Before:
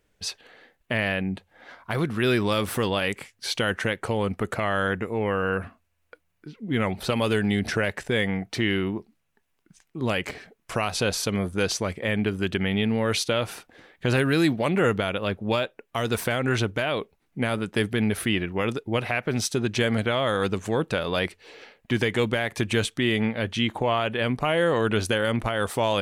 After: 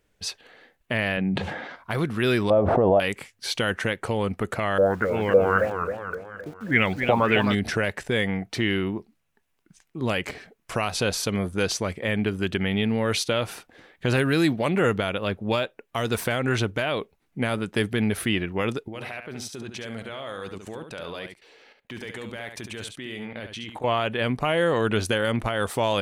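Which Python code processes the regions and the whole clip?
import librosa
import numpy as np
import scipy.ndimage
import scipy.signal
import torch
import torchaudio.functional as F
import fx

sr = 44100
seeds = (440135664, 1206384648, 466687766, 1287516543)

y = fx.chain(x, sr, fx.highpass_res(hz=140.0, q=1.6),
    fx.air_absorb(metres=88.0),
    fx.sustainer(db_per_s=41.0), at=(1.17, 1.76))
y = fx.chain(y, sr, fx.lowpass_res(hz=670.0, q=4.2),
    fx.pre_swell(db_per_s=23.0), at=(2.5, 3.0))
y = fx.chain(y, sr, fx.filter_lfo_lowpass(shape='saw_up', hz=1.8, low_hz=450.0, high_hz=6600.0, q=7.1),
    fx.sample_gate(floor_db=-43.5),
    fx.echo_warbled(ms=264, feedback_pct=51, rate_hz=2.8, cents=191, wet_db=-7.5), at=(4.78, 7.55))
y = fx.chain(y, sr, fx.low_shelf(hz=220.0, db=-6.5),
    fx.level_steps(step_db=18),
    fx.echo_single(ms=70, db=-7.5), at=(18.88, 23.84))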